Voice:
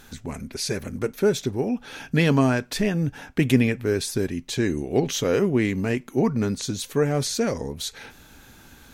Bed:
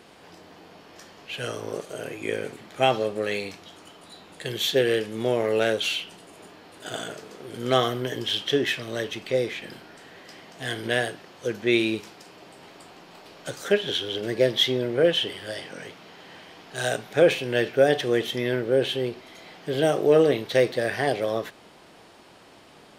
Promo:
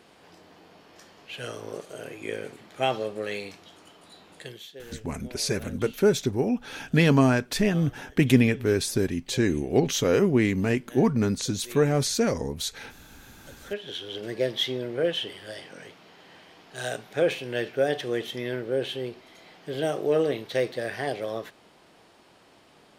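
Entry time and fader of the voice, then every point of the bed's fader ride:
4.80 s, 0.0 dB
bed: 4.4 s -4.5 dB
4.72 s -23 dB
13.03 s -23 dB
14.16 s -5.5 dB

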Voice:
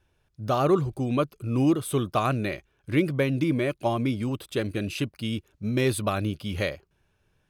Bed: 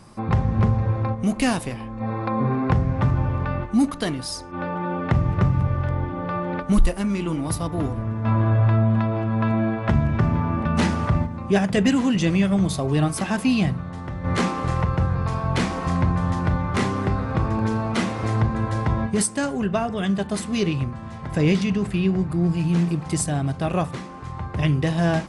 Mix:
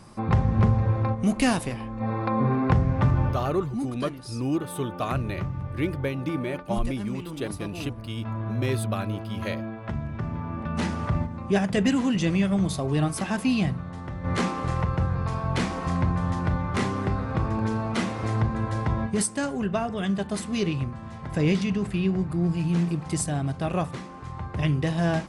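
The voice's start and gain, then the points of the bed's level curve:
2.85 s, -4.5 dB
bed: 3.28 s -1 dB
3.54 s -11.5 dB
10.14 s -11.5 dB
11.34 s -3.5 dB

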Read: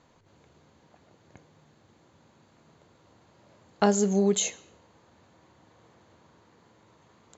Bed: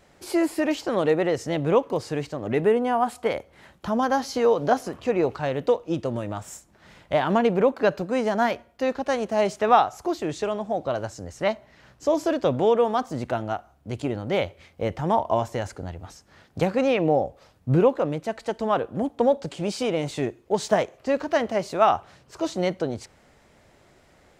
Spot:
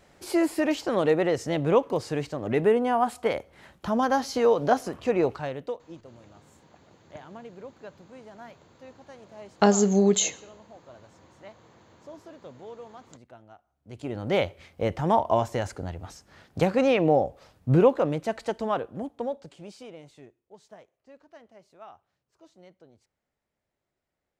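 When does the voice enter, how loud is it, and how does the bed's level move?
5.80 s, +3.0 dB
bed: 5.27 s -1 dB
6.15 s -23 dB
13.6 s -23 dB
14.26 s 0 dB
18.39 s 0 dB
20.62 s -28 dB

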